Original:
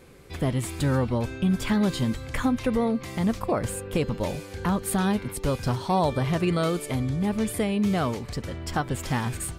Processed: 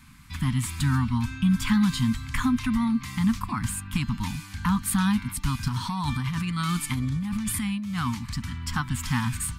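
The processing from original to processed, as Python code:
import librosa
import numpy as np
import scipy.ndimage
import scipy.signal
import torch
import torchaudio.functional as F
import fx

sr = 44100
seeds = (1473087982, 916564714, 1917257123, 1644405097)

y = scipy.signal.sosfilt(scipy.signal.ellip(3, 1.0, 60, [250.0, 970.0], 'bandstop', fs=sr, output='sos'), x)
y = fx.over_compress(y, sr, threshold_db=-30.0, ratio=-1.0, at=(5.68, 8.07))
y = y * 10.0 ** (2.5 / 20.0)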